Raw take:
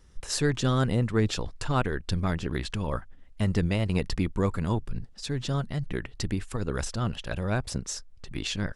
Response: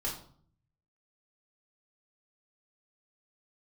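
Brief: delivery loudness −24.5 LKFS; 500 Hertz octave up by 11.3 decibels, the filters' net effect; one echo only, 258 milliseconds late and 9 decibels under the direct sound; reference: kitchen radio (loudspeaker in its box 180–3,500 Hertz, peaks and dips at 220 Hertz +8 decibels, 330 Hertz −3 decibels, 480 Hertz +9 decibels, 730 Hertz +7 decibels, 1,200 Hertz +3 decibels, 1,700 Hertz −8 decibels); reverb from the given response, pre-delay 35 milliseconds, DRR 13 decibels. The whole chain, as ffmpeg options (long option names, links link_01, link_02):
-filter_complex "[0:a]equalizer=frequency=500:width_type=o:gain=6,aecho=1:1:258:0.355,asplit=2[link_01][link_02];[1:a]atrim=start_sample=2205,adelay=35[link_03];[link_02][link_03]afir=irnorm=-1:irlink=0,volume=-16.5dB[link_04];[link_01][link_04]amix=inputs=2:normalize=0,highpass=180,equalizer=frequency=220:width_type=q:width=4:gain=8,equalizer=frequency=330:width_type=q:width=4:gain=-3,equalizer=frequency=480:width_type=q:width=4:gain=9,equalizer=frequency=730:width_type=q:width=4:gain=7,equalizer=frequency=1200:width_type=q:width=4:gain=3,equalizer=frequency=1700:width_type=q:width=4:gain=-8,lowpass=frequency=3500:width=0.5412,lowpass=frequency=3500:width=1.3066,volume=-0.5dB"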